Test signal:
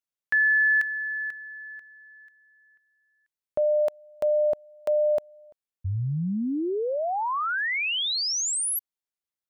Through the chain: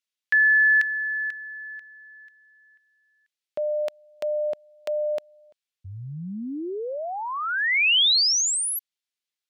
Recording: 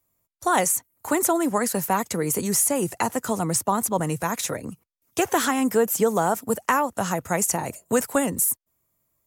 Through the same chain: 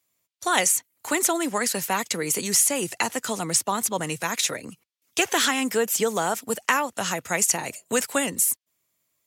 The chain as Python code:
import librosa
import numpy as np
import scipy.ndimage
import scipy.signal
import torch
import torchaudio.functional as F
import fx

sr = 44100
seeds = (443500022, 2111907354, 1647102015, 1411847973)

y = fx.weighting(x, sr, curve='D')
y = F.gain(torch.from_numpy(y), -3.0).numpy()